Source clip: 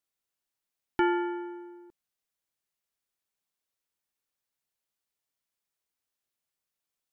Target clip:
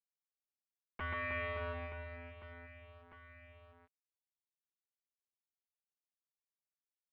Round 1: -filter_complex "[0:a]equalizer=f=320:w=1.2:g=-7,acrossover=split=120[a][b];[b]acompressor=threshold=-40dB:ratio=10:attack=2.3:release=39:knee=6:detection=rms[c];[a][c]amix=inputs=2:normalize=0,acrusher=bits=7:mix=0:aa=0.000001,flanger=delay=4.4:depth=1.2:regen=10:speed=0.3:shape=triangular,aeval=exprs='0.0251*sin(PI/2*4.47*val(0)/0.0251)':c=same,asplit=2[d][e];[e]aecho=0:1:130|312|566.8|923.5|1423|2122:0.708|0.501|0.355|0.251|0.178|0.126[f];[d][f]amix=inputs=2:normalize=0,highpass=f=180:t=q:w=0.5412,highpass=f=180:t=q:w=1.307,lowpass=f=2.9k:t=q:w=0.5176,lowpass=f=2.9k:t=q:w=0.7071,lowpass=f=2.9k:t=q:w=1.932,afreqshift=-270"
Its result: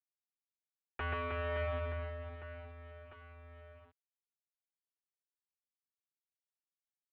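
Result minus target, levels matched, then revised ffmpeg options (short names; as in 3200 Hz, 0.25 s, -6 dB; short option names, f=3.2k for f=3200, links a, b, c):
compressor: peak gain reduction -8 dB
-filter_complex "[0:a]equalizer=f=320:w=1.2:g=-7,acrossover=split=120[a][b];[b]acompressor=threshold=-49dB:ratio=10:attack=2.3:release=39:knee=6:detection=rms[c];[a][c]amix=inputs=2:normalize=0,acrusher=bits=7:mix=0:aa=0.000001,flanger=delay=4.4:depth=1.2:regen=10:speed=0.3:shape=triangular,aeval=exprs='0.0251*sin(PI/2*4.47*val(0)/0.0251)':c=same,asplit=2[d][e];[e]aecho=0:1:130|312|566.8|923.5|1423|2122:0.708|0.501|0.355|0.251|0.178|0.126[f];[d][f]amix=inputs=2:normalize=0,highpass=f=180:t=q:w=0.5412,highpass=f=180:t=q:w=1.307,lowpass=f=2.9k:t=q:w=0.5176,lowpass=f=2.9k:t=q:w=0.7071,lowpass=f=2.9k:t=q:w=1.932,afreqshift=-270"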